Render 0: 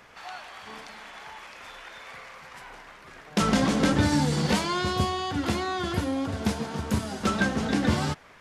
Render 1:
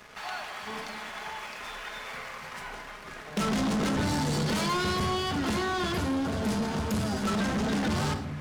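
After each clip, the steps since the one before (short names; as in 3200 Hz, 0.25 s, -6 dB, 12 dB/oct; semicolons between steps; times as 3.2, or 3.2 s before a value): shoebox room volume 3200 m³, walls furnished, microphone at 1.4 m; limiter -16 dBFS, peak gain reduction 6.5 dB; sample leveller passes 3; gain -7.5 dB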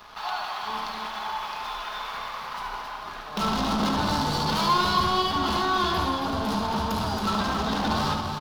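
graphic EQ 125/250/500/1000/2000/4000/8000 Hz -9/-4/-7/+8/-10/+6/-12 dB; loudspeakers at several distances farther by 25 m -6 dB, 94 m -6 dB; gain +4.5 dB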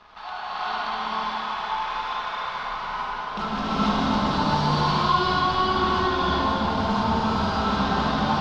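limiter -18 dBFS, peak gain reduction 6.5 dB; air absorption 140 m; non-linear reverb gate 0.49 s rising, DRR -7.5 dB; gain -3.5 dB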